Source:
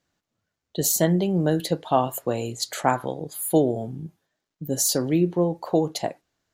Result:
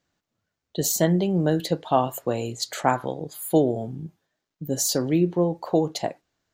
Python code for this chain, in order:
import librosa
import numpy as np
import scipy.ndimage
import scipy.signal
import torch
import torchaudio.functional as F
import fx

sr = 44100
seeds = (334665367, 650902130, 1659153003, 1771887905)

y = fx.peak_eq(x, sr, hz=11000.0, db=-7.5, octaves=0.51)